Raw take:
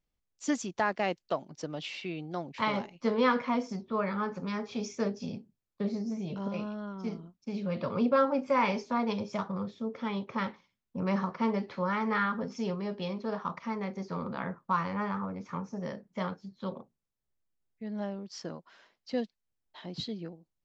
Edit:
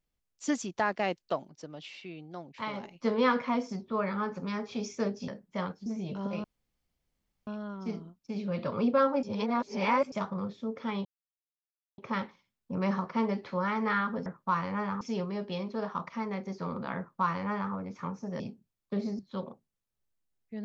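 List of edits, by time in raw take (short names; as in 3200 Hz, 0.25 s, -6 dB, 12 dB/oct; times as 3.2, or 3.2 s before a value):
1.49–2.83 gain -6.5 dB
5.28–6.07 swap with 15.9–16.48
6.65 insert room tone 1.03 s
8.41–9.3 reverse
10.23 insert silence 0.93 s
14.48–15.23 copy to 12.51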